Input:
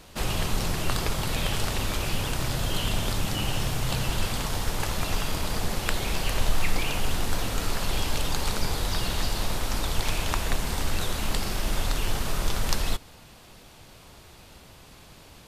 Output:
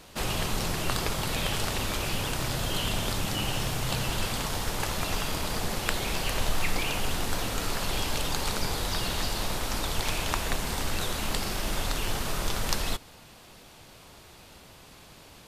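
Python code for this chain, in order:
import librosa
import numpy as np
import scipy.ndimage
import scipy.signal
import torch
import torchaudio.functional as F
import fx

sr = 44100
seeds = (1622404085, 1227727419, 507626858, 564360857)

y = fx.low_shelf(x, sr, hz=120.0, db=-5.5)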